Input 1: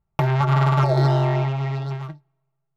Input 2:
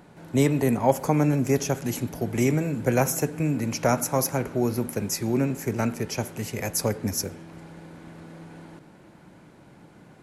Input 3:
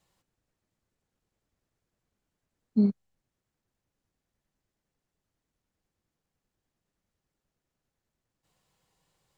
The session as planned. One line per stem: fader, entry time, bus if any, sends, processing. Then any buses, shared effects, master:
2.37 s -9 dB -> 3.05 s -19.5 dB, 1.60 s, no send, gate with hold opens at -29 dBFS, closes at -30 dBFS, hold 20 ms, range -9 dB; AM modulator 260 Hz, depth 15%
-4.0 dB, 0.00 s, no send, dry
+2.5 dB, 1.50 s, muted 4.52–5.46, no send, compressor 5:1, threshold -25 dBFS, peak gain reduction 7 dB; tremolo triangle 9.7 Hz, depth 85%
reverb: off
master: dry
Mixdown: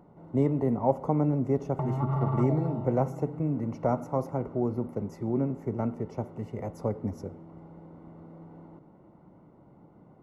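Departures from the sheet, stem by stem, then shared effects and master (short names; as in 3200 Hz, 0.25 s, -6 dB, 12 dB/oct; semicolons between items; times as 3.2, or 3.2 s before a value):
stem 3: muted; master: extra polynomial smoothing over 65 samples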